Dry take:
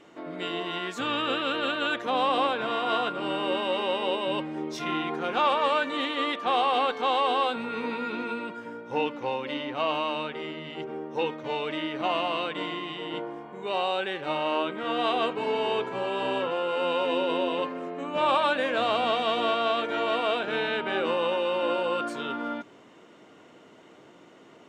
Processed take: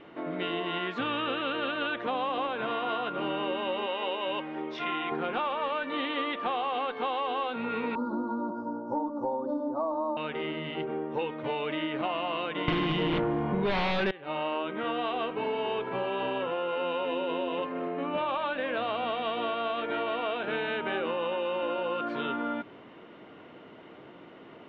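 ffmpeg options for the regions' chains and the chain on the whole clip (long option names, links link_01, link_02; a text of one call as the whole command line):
ffmpeg -i in.wav -filter_complex "[0:a]asettb=1/sr,asplit=3[link_01][link_02][link_03];[link_01]atrim=end=3.864[link_04];[link_02]atrim=start=3.86:end=5.12,asetpts=PTS-STARTPTS,afade=type=in:duration=0.004:curve=qsin,afade=type=out:start_time=1.256:duration=0.004:curve=qsin,highpass=frequency=600:poles=1,bandreject=frequency=4100:width=26[link_05];[link_03]atrim=start=5.116[link_06];[link_04][link_05]acrossfade=duration=0.004:curve1=hsin:curve2=qsin[link_07];[link_07][link_06]acrossfade=duration=0.004:curve1=qsin:curve2=hsin,asettb=1/sr,asplit=3[link_08][link_09][link_10];[link_08]atrim=end=7.954[link_11];[link_09]atrim=start=7.95:end=10.17,asetpts=PTS-STARTPTS,afade=type=in:duration=0.004:curve=qsin,afade=type=out:start_time=2.216:duration=0.004:curve=qsin,asuperstop=centerf=2500:order=8:qfactor=0.61,aecho=1:1:3.4:0.9,atrim=end_sample=97902[link_12];[link_10]atrim=start=10.166[link_13];[link_11][link_12]acrossfade=duration=0.004:curve1=hsin:curve2=qsin[link_14];[link_14][link_13]acrossfade=duration=0.004:curve1=qsin:curve2=hsin,asettb=1/sr,asplit=3[link_15][link_16][link_17];[link_15]atrim=end=12.684[link_18];[link_16]atrim=start=12.68:end=14.11,asetpts=PTS-STARTPTS,afade=type=in:duration=0.004:curve=qsin,afade=type=out:start_time=1.426:duration=0.004:curve=qsin,acontrast=83,bass=frequency=250:gain=13,treble=frequency=4000:gain=4,aeval=exprs='0.376*sin(PI/2*3.55*val(0)/0.376)':channel_layout=same[link_19];[link_17]atrim=start=14.106[link_20];[link_18][link_19]acrossfade=duration=0.004:curve1=hsin:curve2=qsin[link_21];[link_21][link_20]acrossfade=duration=0.004:curve1=qsin:curve2=hsin,lowpass=frequency=3400:width=0.5412,lowpass=frequency=3400:width=1.3066,lowshelf=frequency=72:gain=7.5,acompressor=threshold=-31dB:ratio=6,volume=3dB" out.wav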